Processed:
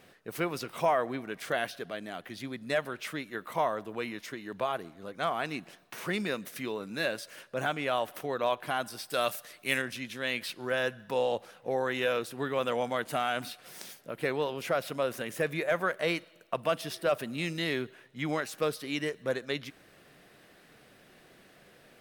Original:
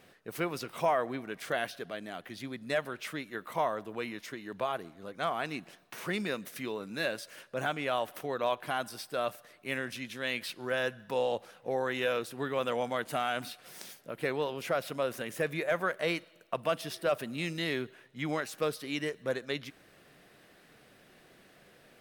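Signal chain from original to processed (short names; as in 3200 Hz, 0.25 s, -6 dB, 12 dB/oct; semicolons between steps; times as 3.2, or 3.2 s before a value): 9.1–9.82 high shelf 2400 Hz +11.5 dB; gain +1.5 dB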